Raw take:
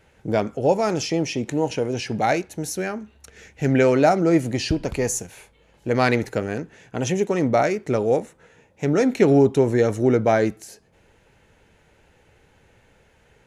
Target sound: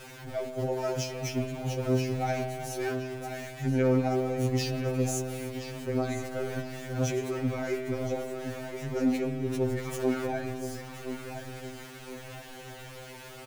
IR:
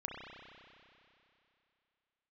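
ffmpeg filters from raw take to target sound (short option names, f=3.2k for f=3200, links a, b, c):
-filter_complex "[0:a]aeval=exprs='val(0)+0.5*0.0501*sgn(val(0))':c=same,agate=range=-16dB:threshold=-22dB:ratio=16:detection=peak,asplit=3[a][b][c];[a]afade=t=out:st=9.77:d=0.02[d];[b]highpass=640,afade=t=in:st=9.77:d=0.02,afade=t=out:st=10.25:d=0.02[e];[c]afade=t=in:st=10.25:d=0.02[f];[d][e][f]amix=inputs=3:normalize=0,acompressor=threshold=-28dB:ratio=6,alimiter=level_in=3dB:limit=-24dB:level=0:latency=1:release=21,volume=-3dB,asplit=2[g][h];[h]adelay=1020,lowpass=f=4.8k:p=1,volume=-9dB,asplit=2[i][j];[j]adelay=1020,lowpass=f=4.8k:p=1,volume=0.38,asplit=2[k][l];[l]adelay=1020,lowpass=f=4.8k:p=1,volume=0.38,asplit=2[m][n];[n]adelay=1020,lowpass=f=4.8k:p=1,volume=0.38[o];[g][i][k][m][o]amix=inputs=5:normalize=0,asplit=2[p][q];[1:a]atrim=start_sample=2205[r];[q][r]afir=irnorm=-1:irlink=0,volume=-1.5dB[s];[p][s]amix=inputs=2:normalize=0,afftfilt=real='re*2.45*eq(mod(b,6),0)':imag='im*2.45*eq(mod(b,6),0)':win_size=2048:overlap=0.75"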